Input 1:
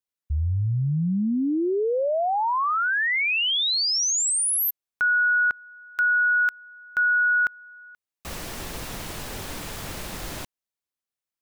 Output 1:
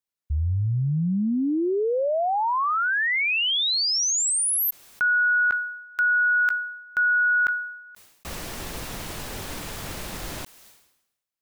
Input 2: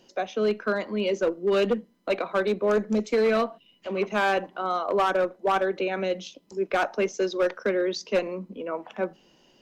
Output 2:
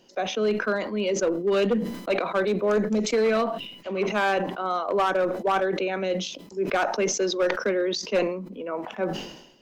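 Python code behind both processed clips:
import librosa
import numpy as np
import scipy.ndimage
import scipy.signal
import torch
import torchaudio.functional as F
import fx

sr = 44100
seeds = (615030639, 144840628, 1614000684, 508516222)

y = fx.sustainer(x, sr, db_per_s=67.0)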